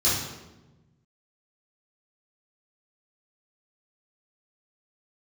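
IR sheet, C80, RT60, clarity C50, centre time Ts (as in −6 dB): 4.5 dB, 1.1 s, 1.0 dB, 66 ms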